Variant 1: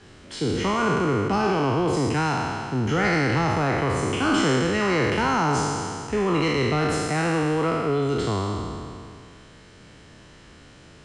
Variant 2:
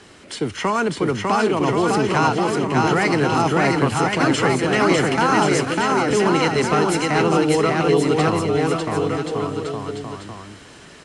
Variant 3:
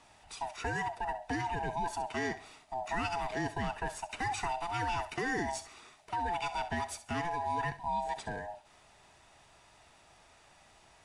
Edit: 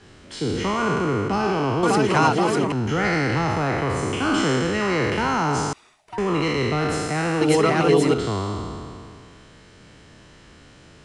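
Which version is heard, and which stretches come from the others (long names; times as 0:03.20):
1
0:01.83–0:02.72: punch in from 2
0:05.73–0:06.18: punch in from 3
0:07.41–0:08.14: punch in from 2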